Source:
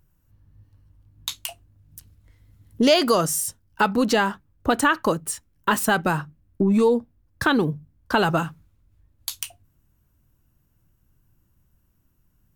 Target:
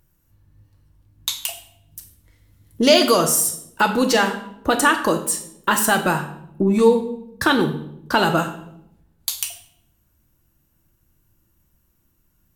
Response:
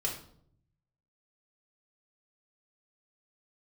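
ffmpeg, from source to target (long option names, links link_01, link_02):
-filter_complex "[0:a]asplit=2[link_01][link_02];[link_02]highpass=160[link_03];[1:a]atrim=start_sample=2205,asetrate=31752,aresample=44100,highshelf=frequency=3100:gain=8.5[link_04];[link_03][link_04]afir=irnorm=-1:irlink=0,volume=-8dB[link_05];[link_01][link_05]amix=inputs=2:normalize=0,volume=-1dB"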